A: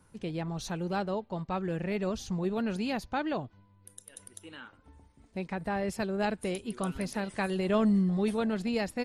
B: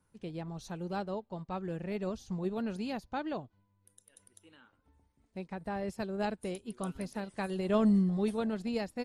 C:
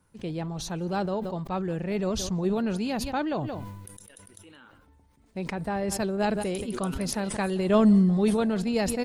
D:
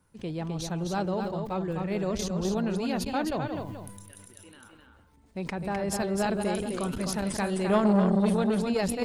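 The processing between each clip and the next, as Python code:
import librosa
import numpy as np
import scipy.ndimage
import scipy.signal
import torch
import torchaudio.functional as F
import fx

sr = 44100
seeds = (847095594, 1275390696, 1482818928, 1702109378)

y1 = fx.dynamic_eq(x, sr, hz=2100.0, q=1.0, threshold_db=-51.0, ratio=4.0, max_db=-4)
y1 = fx.upward_expand(y1, sr, threshold_db=-46.0, expansion=1.5)
y2 = y1 + 10.0 ** (-23.5 / 20.0) * np.pad(y1, (int(177 * sr / 1000.0), 0))[:len(y1)]
y2 = fx.sustainer(y2, sr, db_per_s=33.0)
y2 = y2 * librosa.db_to_amplitude(7.0)
y3 = y2 + 10.0 ** (-5.0 / 20.0) * np.pad(y2, (int(257 * sr / 1000.0), 0))[:len(y2)]
y3 = fx.transformer_sat(y3, sr, knee_hz=560.0)
y3 = y3 * librosa.db_to_amplitude(-1.0)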